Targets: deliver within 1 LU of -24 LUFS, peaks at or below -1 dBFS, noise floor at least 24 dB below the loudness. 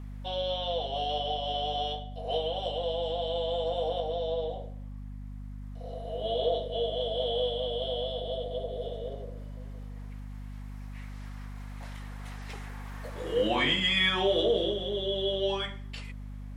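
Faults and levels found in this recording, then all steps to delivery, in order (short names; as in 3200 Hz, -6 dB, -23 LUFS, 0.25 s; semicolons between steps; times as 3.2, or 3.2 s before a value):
hum 50 Hz; harmonics up to 250 Hz; hum level -38 dBFS; loudness -30.5 LUFS; peak -14.0 dBFS; loudness target -24.0 LUFS
-> de-hum 50 Hz, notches 5; gain +6.5 dB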